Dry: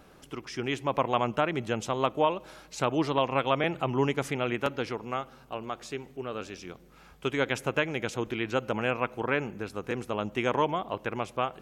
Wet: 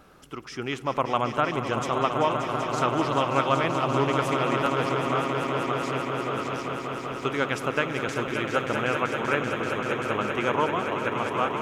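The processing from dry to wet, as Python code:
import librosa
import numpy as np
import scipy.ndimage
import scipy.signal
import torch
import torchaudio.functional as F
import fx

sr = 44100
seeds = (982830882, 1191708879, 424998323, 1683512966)

y = fx.peak_eq(x, sr, hz=1300.0, db=6.5, octaves=0.39)
y = fx.echo_swell(y, sr, ms=193, loudest=5, wet_db=-9.0)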